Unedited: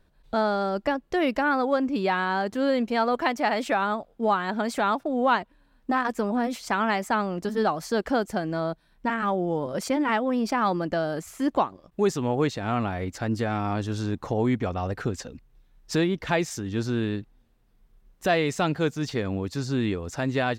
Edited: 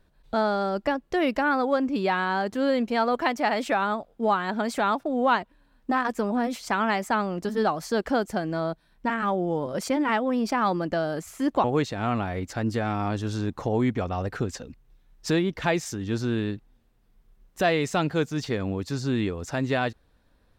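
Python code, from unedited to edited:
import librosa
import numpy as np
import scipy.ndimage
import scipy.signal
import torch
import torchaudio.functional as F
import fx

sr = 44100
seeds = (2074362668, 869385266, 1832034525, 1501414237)

y = fx.edit(x, sr, fx.cut(start_s=11.64, length_s=0.65), tone=tone)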